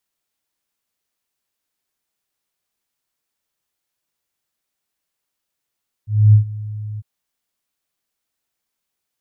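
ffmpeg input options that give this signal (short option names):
-f lavfi -i "aevalsrc='0.596*sin(2*PI*106*t)':d=0.952:s=44100,afade=t=in:d=0.263,afade=t=out:st=0.263:d=0.108:silence=0.1,afade=t=out:st=0.92:d=0.032"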